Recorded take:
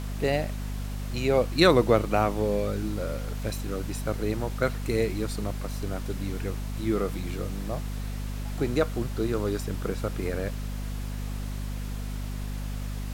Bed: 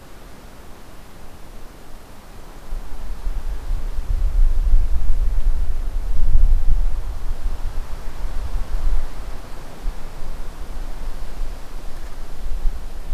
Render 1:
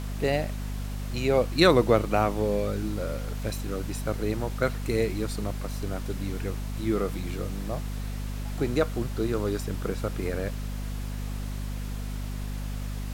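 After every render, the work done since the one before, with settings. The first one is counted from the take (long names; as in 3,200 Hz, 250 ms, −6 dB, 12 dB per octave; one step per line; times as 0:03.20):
no processing that can be heard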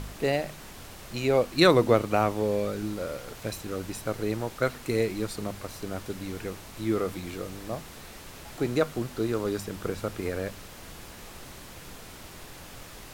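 hum removal 50 Hz, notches 5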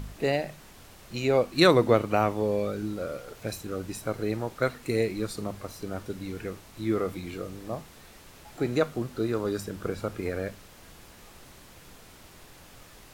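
noise reduction from a noise print 6 dB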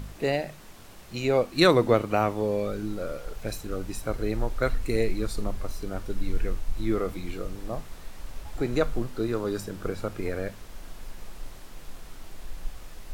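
mix in bed −14.5 dB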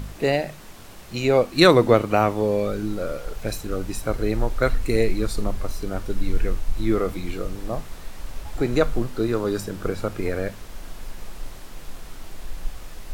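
level +5 dB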